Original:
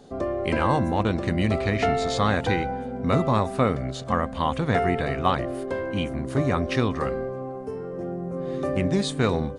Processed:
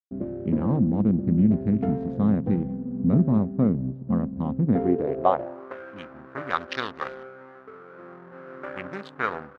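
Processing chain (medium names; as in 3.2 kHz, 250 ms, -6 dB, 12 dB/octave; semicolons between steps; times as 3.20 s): local Wiener filter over 41 samples; 6.50–7.23 s: high-order bell 4.4 kHz +15 dB 1.3 oct; hysteresis with a dead band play -36 dBFS; band-pass sweep 200 Hz -> 1.4 kHz, 4.65–5.77 s; trim +8.5 dB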